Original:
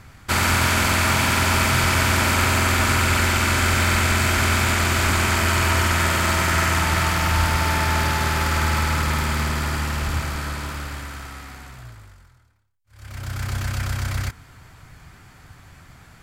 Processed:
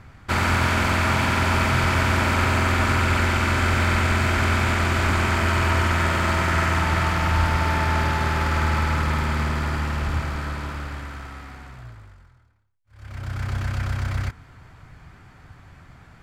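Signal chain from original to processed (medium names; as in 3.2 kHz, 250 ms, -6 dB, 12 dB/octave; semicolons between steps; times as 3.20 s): low-pass 2.2 kHz 6 dB/octave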